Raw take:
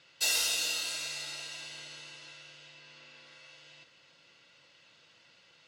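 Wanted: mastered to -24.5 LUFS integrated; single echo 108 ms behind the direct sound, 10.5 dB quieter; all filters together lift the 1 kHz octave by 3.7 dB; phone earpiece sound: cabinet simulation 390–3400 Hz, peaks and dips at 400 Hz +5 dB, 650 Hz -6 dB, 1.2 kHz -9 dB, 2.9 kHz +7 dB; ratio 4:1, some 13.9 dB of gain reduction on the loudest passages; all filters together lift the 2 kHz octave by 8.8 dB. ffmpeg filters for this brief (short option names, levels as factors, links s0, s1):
-af "equalizer=f=1000:t=o:g=7.5,equalizer=f=2000:t=o:g=7,acompressor=threshold=0.01:ratio=4,highpass=390,equalizer=f=400:t=q:w=4:g=5,equalizer=f=650:t=q:w=4:g=-6,equalizer=f=1200:t=q:w=4:g=-9,equalizer=f=2900:t=q:w=4:g=7,lowpass=f=3400:w=0.5412,lowpass=f=3400:w=1.3066,aecho=1:1:108:0.299,volume=5.96"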